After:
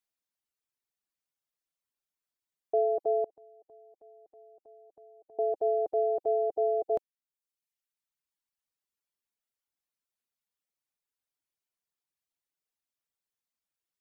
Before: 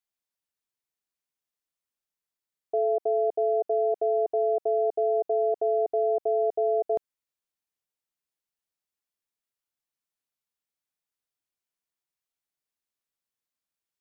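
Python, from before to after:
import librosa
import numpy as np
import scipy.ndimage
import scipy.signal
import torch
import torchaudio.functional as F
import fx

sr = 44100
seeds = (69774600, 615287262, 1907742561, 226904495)

y = fx.dereverb_blind(x, sr, rt60_s=1.2)
y = fx.gate_flip(y, sr, shuts_db=-28.0, range_db=-28, at=(3.24, 5.39))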